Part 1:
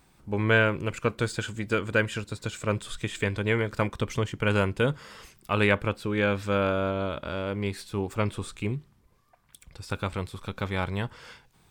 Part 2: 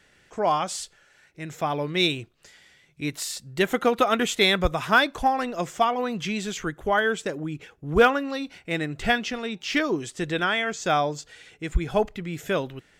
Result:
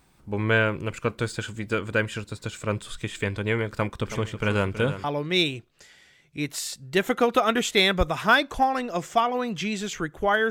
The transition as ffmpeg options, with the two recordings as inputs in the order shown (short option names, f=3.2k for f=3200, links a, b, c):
-filter_complex "[0:a]asplit=3[a][b][c];[a]afade=t=out:st=4.04:d=0.02[d];[b]aecho=1:1:324|648|972|1296|1620|1944:0.266|0.146|0.0805|0.0443|0.0243|0.0134,afade=t=in:st=4.04:d=0.02,afade=t=out:st=5.04:d=0.02[e];[c]afade=t=in:st=5.04:d=0.02[f];[d][e][f]amix=inputs=3:normalize=0,apad=whole_dur=10.5,atrim=end=10.5,atrim=end=5.042[g];[1:a]atrim=start=1.678:end=7.14[h];[g][h]acrossfade=d=0.004:c1=hsin:c2=hsin"